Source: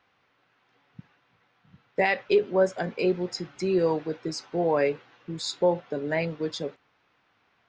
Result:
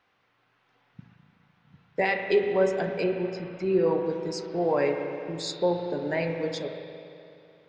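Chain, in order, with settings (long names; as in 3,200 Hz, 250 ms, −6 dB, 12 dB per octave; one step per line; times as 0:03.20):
0:03.04–0:04.06: low-pass filter 2,800 Hz 12 dB per octave
spring reverb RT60 2.7 s, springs 34/42 ms, chirp 25 ms, DRR 4.5 dB
level −2 dB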